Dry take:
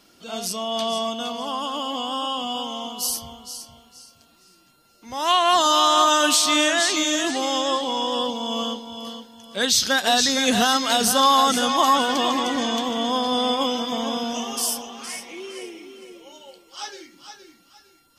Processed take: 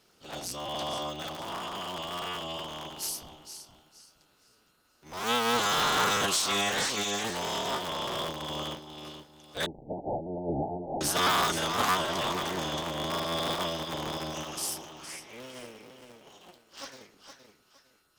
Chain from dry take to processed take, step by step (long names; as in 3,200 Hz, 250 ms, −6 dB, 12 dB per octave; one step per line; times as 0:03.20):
sub-harmonics by changed cycles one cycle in 3, inverted
0:09.66–0:11.01: Butterworth low-pass 850 Hz 96 dB per octave
level −9 dB